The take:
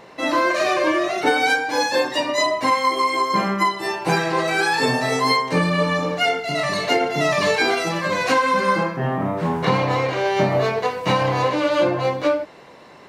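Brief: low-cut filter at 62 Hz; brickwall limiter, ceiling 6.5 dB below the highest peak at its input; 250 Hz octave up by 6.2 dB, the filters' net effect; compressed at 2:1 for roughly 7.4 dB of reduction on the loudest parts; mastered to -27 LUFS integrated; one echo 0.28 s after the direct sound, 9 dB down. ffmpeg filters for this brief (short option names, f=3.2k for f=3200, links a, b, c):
-af "highpass=62,equalizer=f=250:t=o:g=8.5,acompressor=threshold=-25dB:ratio=2,alimiter=limit=-16dB:level=0:latency=1,aecho=1:1:280:0.355,volume=-2.5dB"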